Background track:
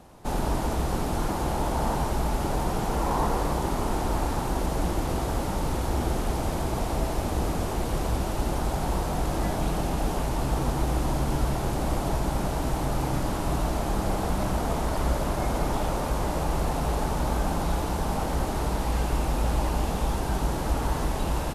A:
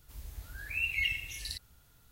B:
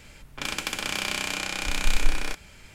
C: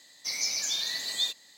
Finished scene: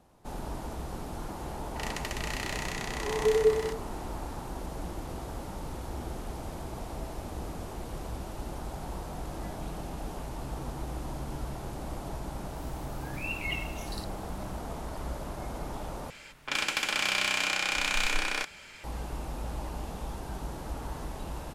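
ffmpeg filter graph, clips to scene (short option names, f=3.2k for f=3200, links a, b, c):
-filter_complex "[2:a]asplit=2[a][b];[0:a]volume=-11dB[c];[a]afreqshift=-450[d];[b]asplit=2[e][f];[f]highpass=f=720:p=1,volume=17dB,asoftclip=type=tanh:threshold=-6dB[g];[e][g]amix=inputs=2:normalize=0,lowpass=f=4.7k:p=1,volume=-6dB[h];[c]asplit=2[i][j];[i]atrim=end=16.104[k];[h]atrim=end=2.74,asetpts=PTS-STARTPTS,volume=-7dB[l];[j]atrim=start=18.836[m];[d]atrim=end=2.74,asetpts=PTS-STARTPTS,volume=-7.5dB,afade=t=in:d=0.004:c=hsin,afade=t=out:st=2.736:d=0.004:c=hsin,adelay=1380[n];[1:a]atrim=end=2.11,asetpts=PTS-STARTPTS,volume=-4dB,afade=t=in:d=0.004:c=hsin,afade=t=out:st=2.106:d=0.004:c=hsin,adelay=12470[o];[k][l]acrossfade=d=0.004:c1=hsin:c2=hsin[p];[p][m]acrossfade=d=0.004:c1=hsin:c2=hsin[q];[q][n][o]amix=inputs=3:normalize=0"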